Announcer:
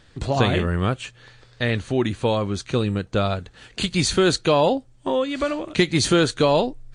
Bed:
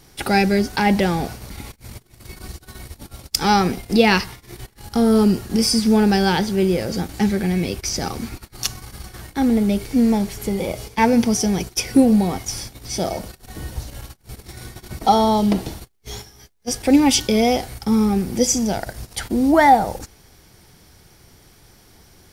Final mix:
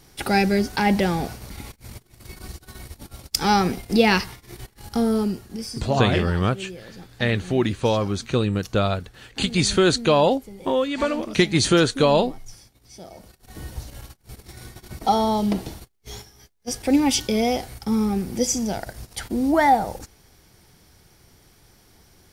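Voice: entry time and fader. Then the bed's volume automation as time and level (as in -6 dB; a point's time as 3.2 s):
5.60 s, +0.5 dB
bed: 4.91 s -2.5 dB
5.86 s -18.5 dB
13.08 s -18.5 dB
13.58 s -4.5 dB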